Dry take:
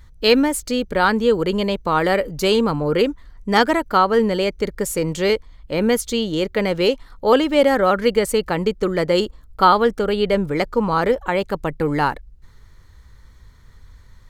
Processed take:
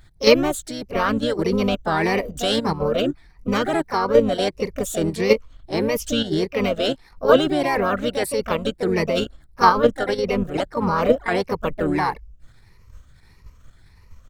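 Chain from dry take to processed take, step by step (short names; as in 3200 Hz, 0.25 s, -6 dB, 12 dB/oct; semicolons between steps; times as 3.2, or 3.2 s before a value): moving spectral ripple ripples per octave 0.84, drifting +1.6 Hz, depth 13 dB; level quantiser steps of 10 dB; harmoniser -12 st -12 dB, +3 st -16 dB, +4 st -5 dB; gain -1.5 dB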